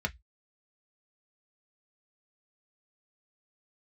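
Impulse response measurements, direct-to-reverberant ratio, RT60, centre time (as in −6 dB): 3.0 dB, 0.10 s, 4 ms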